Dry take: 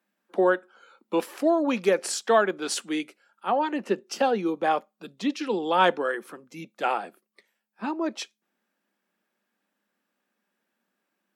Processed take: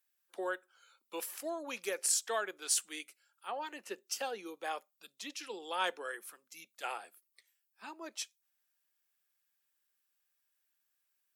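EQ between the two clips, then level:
dynamic equaliser 4,100 Hz, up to −4 dB, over −48 dBFS, Q 1.2
first difference
dynamic equaliser 420 Hz, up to +6 dB, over −57 dBFS, Q 1.3
+2.0 dB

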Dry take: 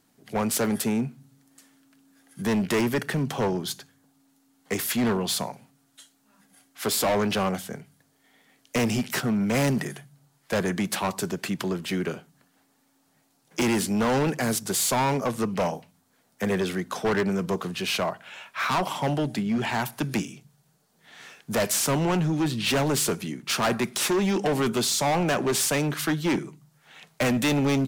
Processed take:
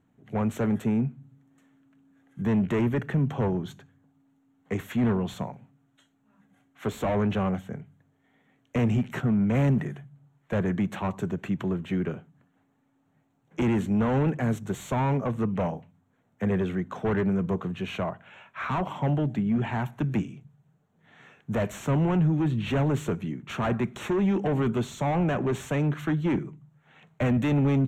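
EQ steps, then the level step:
moving average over 9 samples
parametric band 75 Hz +12.5 dB 2.6 octaves
−4.5 dB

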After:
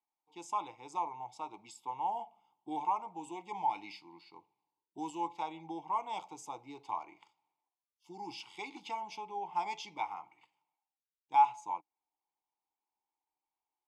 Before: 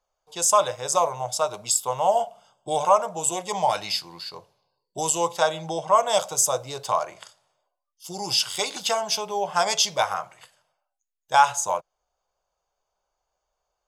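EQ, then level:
formant filter u
0.0 dB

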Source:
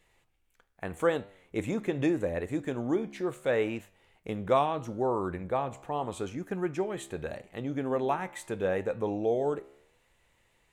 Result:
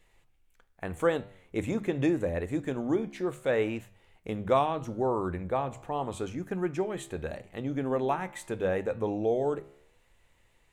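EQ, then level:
low-shelf EQ 100 Hz +9 dB
mains-hum notches 50/100/150/200 Hz
mains-hum notches 60/120 Hz
0.0 dB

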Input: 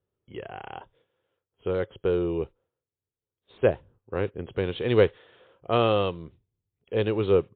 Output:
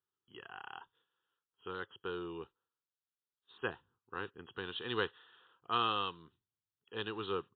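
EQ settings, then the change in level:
high-pass filter 1,500 Hz 6 dB per octave
high-frequency loss of the air 160 metres
phaser with its sweep stopped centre 2,200 Hz, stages 6
+2.5 dB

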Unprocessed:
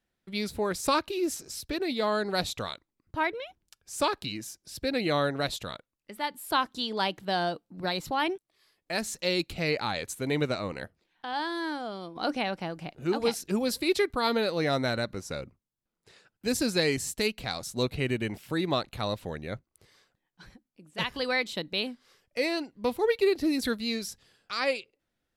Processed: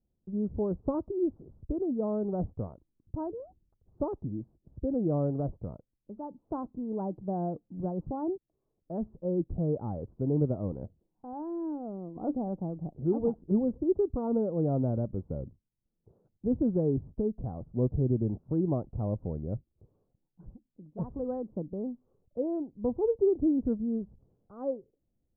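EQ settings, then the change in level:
Gaussian smoothing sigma 13 samples
low-shelf EQ 190 Hz +8.5 dB
0.0 dB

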